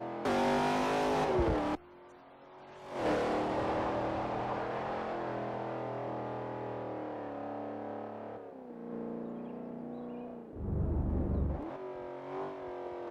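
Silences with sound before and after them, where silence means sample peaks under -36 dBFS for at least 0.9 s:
1.75–2.92 s

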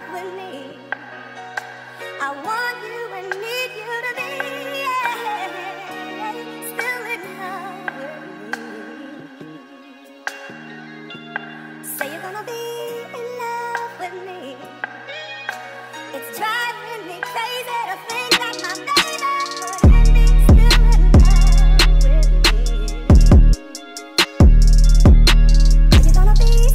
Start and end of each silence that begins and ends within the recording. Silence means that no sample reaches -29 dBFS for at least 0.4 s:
9.56–10.27 s

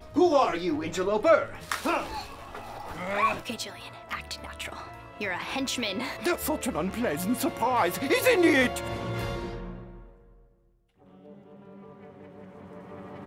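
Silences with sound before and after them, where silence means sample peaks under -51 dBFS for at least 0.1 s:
10.45–11.02 s

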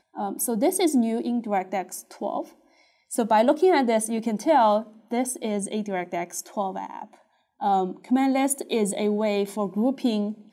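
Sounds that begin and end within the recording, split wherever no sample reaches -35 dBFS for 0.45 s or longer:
3.11–7.04 s

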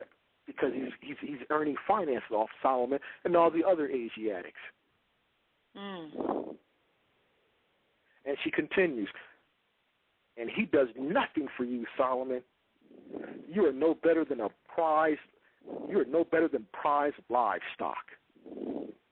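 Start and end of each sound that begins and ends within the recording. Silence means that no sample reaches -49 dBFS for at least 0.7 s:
5.75–6.56 s
8.25–9.32 s

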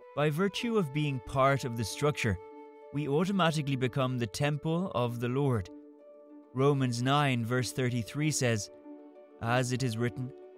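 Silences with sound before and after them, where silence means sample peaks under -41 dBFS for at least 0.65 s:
5.72–6.55 s

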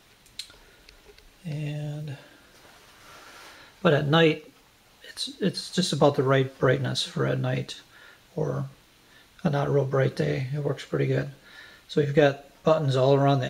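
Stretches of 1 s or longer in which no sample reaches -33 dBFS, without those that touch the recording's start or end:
2.15–3.84 s

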